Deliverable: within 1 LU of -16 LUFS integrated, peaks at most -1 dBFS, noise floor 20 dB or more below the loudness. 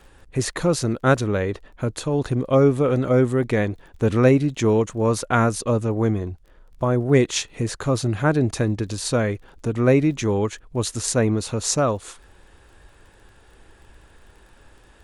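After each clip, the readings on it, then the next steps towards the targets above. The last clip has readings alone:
tick rate 22 per s; loudness -21.5 LUFS; peak level -3.5 dBFS; loudness target -16.0 LUFS
-> de-click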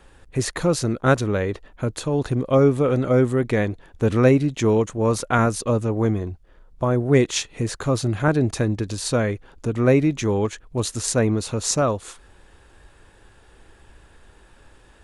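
tick rate 0 per s; loudness -21.5 LUFS; peak level -3.5 dBFS; loudness target -16.0 LUFS
-> trim +5.5 dB; peak limiter -1 dBFS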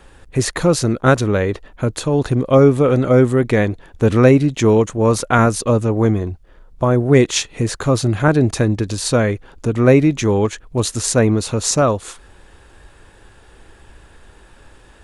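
loudness -16.0 LUFS; peak level -1.0 dBFS; noise floor -47 dBFS

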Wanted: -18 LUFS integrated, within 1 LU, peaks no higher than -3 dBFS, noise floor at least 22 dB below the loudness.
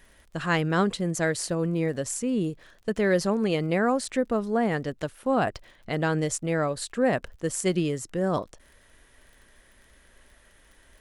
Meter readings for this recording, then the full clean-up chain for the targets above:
tick rate 34 per s; loudness -27.0 LUFS; peak level -11.0 dBFS; loudness target -18.0 LUFS
-> de-click; trim +9 dB; peak limiter -3 dBFS

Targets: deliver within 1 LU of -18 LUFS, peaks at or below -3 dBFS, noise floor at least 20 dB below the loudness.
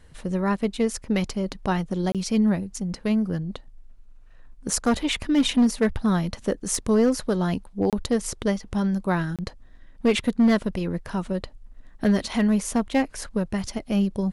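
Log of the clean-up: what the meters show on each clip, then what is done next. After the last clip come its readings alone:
clipped samples 0.6%; clipping level -13.5 dBFS; dropouts 3; longest dropout 27 ms; loudness -24.5 LUFS; peak level -13.5 dBFS; loudness target -18.0 LUFS
-> clip repair -13.5 dBFS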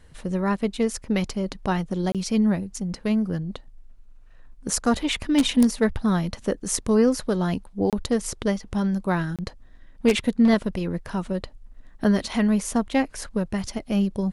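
clipped samples 0.0%; dropouts 3; longest dropout 27 ms
-> interpolate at 2.12/7.90/9.36 s, 27 ms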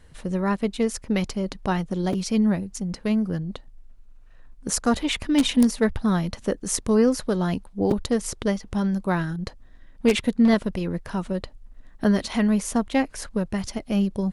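dropouts 0; loudness -24.5 LUFS; peak level -4.5 dBFS; loudness target -18.0 LUFS
-> trim +6.5 dB; peak limiter -3 dBFS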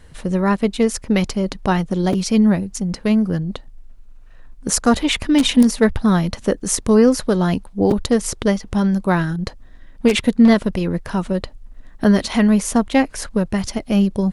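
loudness -18.0 LUFS; peak level -3.0 dBFS; noise floor -42 dBFS

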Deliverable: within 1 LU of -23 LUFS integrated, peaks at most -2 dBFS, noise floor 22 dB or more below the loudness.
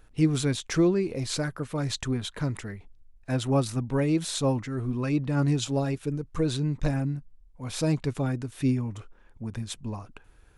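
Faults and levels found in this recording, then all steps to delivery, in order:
loudness -28.5 LUFS; peak level -11.5 dBFS; loudness target -23.0 LUFS
-> trim +5.5 dB

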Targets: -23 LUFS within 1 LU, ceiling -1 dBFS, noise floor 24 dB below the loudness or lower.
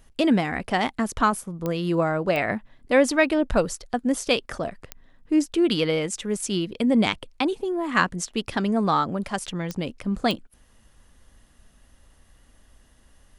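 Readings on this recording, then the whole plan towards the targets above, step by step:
clicks found 5; loudness -24.5 LUFS; peak level -5.0 dBFS; loudness target -23.0 LUFS
-> de-click; trim +1.5 dB

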